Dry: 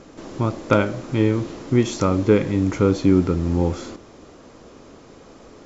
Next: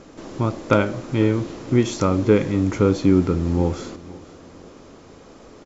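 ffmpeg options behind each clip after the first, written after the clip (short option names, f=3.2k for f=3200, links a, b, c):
-af "aecho=1:1:500|1000|1500:0.0891|0.0357|0.0143"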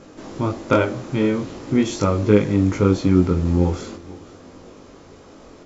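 -af "flanger=delay=19.5:depth=3.1:speed=0.44,volume=3.5dB"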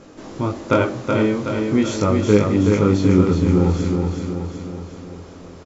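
-af "aecho=1:1:374|748|1122|1496|1870|2244|2618:0.596|0.328|0.18|0.0991|0.0545|0.03|0.0165"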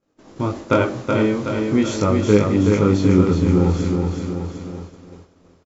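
-af "agate=range=-33dB:threshold=-28dB:ratio=3:detection=peak"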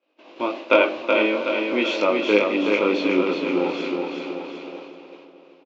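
-filter_complex "[0:a]highpass=f=380:w=0.5412,highpass=f=380:w=1.3066,equalizer=f=430:t=q:w=4:g=-10,equalizer=f=820:t=q:w=4:g=-5,equalizer=f=1.3k:t=q:w=4:g=-8,equalizer=f=1.8k:t=q:w=4:g=-8,equalizer=f=2.6k:t=q:w=4:g=9,lowpass=f=3.8k:w=0.5412,lowpass=f=3.8k:w=1.3066,asplit=2[a][b];[b]adelay=608,lowpass=f=1.4k:p=1,volume=-12.5dB,asplit=2[c][d];[d]adelay=608,lowpass=f=1.4k:p=1,volume=0.31,asplit=2[e][f];[f]adelay=608,lowpass=f=1.4k:p=1,volume=0.31[g];[a][c][e][g]amix=inputs=4:normalize=0,volume=6dB"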